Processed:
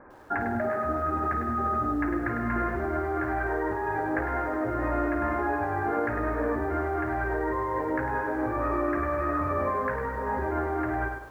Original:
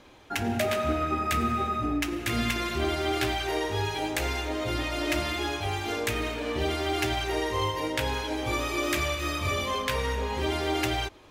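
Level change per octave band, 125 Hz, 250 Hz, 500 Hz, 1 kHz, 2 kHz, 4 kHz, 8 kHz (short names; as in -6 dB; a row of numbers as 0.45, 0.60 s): -2.0 dB, +1.5 dB, +1.0 dB, +2.5 dB, -1.0 dB, under -30 dB, under -20 dB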